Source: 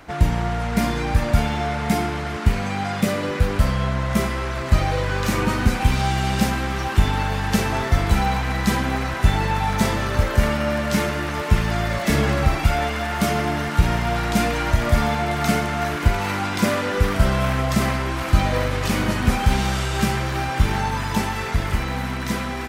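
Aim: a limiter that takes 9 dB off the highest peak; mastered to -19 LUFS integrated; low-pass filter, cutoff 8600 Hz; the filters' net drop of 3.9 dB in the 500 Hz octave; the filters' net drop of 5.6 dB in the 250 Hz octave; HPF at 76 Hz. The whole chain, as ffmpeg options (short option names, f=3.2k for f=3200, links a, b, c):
-af "highpass=76,lowpass=8.6k,equalizer=f=250:t=o:g=-7,equalizer=f=500:t=o:g=-3.5,volume=7dB,alimiter=limit=-9dB:level=0:latency=1"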